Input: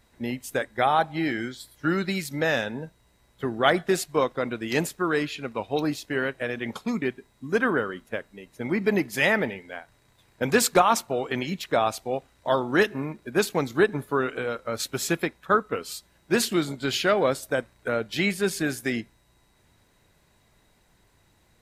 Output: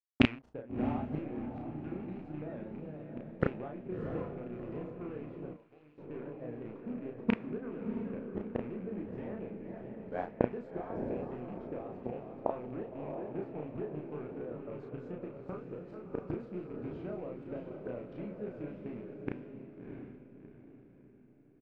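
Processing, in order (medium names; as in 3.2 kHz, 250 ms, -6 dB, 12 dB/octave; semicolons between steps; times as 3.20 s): rattle on loud lows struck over -31 dBFS, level -13 dBFS; bit crusher 7-bit; delay 425 ms -13 dB; compression 16:1, threshold -25 dBFS, peak gain reduction 13.5 dB; inverted gate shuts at -29 dBFS, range -28 dB; vibrato 6.1 Hz 82 cents; echo that smears into a reverb 671 ms, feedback 46%, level -4 dB; level-controlled noise filter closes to 420 Hz, open at -31.5 dBFS; 5.53–5.98 s: pre-emphasis filter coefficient 0.9; doubling 33 ms -3 dB; trim +17 dB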